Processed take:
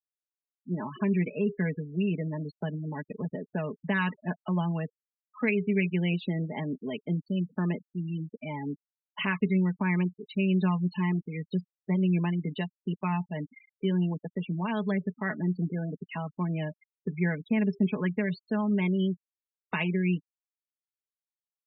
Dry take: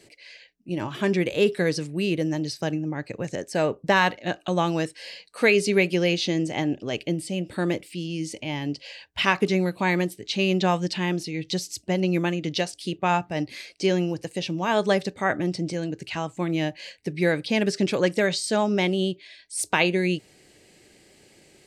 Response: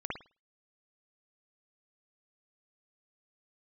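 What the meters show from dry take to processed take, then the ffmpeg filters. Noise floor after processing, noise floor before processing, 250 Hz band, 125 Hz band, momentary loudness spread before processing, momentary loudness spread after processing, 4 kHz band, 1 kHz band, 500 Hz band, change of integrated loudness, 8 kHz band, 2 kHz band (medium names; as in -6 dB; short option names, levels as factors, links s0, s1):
under -85 dBFS, -57 dBFS, -2.0 dB, 0.0 dB, 10 LU, 10 LU, -15.5 dB, -10.0 dB, -10.0 dB, -5.0 dB, under -40 dB, -8.5 dB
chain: -filter_complex "[0:a]highpass=100,equalizer=f=170:t=q:w=4:g=4,equalizer=f=260:t=q:w=4:g=4,equalizer=f=1000:t=q:w=4:g=8,lowpass=f=7000:w=0.5412,lowpass=f=7000:w=1.3066,acrossover=split=2800[s0][s1];[s1]acompressor=threshold=0.00398:ratio=4:attack=1:release=60[s2];[s0][s2]amix=inputs=2:normalize=0,aecho=1:1:4.7:0.68,afftfilt=real='re*gte(hypot(re,im),0.0562)':imag='im*gte(hypot(re,im),0.0562)':win_size=1024:overlap=0.75,acrossover=split=290|1700[s3][s4][s5];[s4]acompressor=threshold=0.0282:ratio=6[s6];[s3][s6][s5]amix=inputs=3:normalize=0,volume=0.531"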